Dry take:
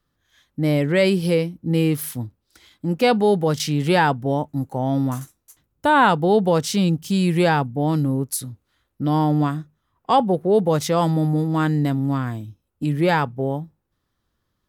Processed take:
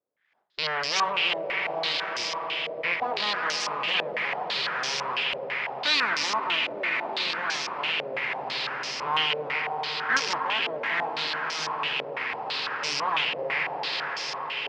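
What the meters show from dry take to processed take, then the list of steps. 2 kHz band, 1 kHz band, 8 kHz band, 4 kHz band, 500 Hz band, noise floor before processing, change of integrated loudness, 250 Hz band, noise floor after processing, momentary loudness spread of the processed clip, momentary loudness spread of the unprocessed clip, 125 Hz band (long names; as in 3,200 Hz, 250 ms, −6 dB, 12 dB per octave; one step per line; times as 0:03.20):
+2.5 dB, −6.0 dB, −4.5 dB, +6.0 dB, −12.5 dB, −75 dBFS, −6.5 dB, −24.5 dB, −36 dBFS, 5 LU, 11 LU, −28.5 dB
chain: loose part that buzzes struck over −31 dBFS, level −16 dBFS
full-wave rectification
high-frequency loss of the air 160 metres
echo that builds up and dies away 84 ms, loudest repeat 5, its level −12.5 dB
in parallel at −8.5 dB: wave folding −11 dBFS
on the sum: high-pass filter 140 Hz 6 dB per octave
spectral tilt +4.5 dB per octave
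on a send: feedback delay with all-pass diffusion 1,012 ms, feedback 72%, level −8 dB
on the sum: low-pass on a step sequencer 6 Hz 560–5,700 Hz
level −8.5 dB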